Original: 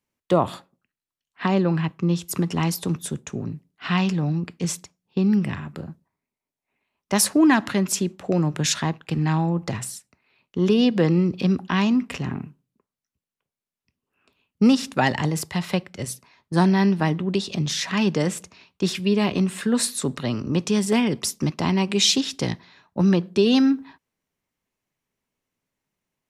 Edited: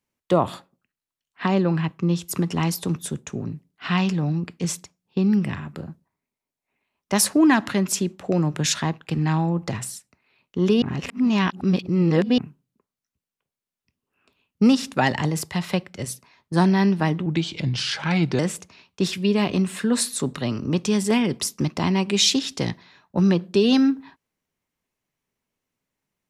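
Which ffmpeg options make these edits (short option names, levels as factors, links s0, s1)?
-filter_complex "[0:a]asplit=5[s0][s1][s2][s3][s4];[s0]atrim=end=10.822[s5];[s1]atrim=start=10.818:end=12.382,asetpts=PTS-STARTPTS,areverse[s6];[s2]atrim=start=12.378:end=17.264[s7];[s3]atrim=start=17.26:end=18.21,asetpts=PTS-STARTPTS,asetrate=37044,aresample=44100[s8];[s4]atrim=start=18.206[s9];[s5][s6]acrossfade=d=0.004:c1=hsin:c2=hsin[s10];[s10][s7]acrossfade=d=0.004:c1=hsin:c2=hsin[s11];[s11][s8]acrossfade=d=0.004:c1=hsin:c2=hsin[s12];[s12][s9]acrossfade=d=0.004:c1=hsin:c2=hsin"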